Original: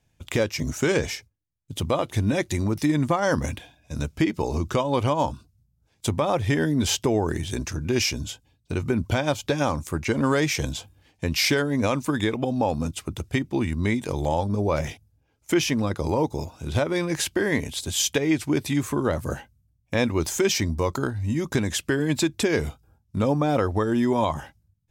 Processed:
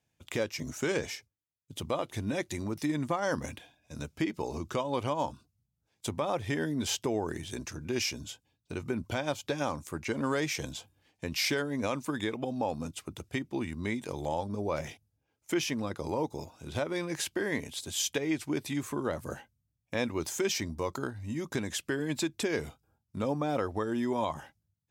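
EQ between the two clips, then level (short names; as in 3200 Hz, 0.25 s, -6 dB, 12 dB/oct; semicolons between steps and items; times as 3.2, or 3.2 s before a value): HPF 170 Hz 6 dB/oct; -7.5 dB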